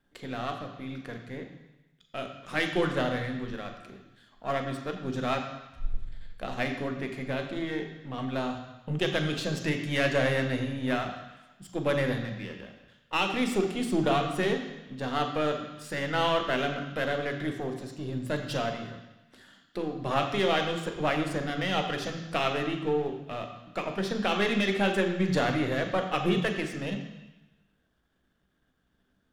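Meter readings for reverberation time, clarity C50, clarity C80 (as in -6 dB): 1.0 s, 6.5 dB, 8.5 dB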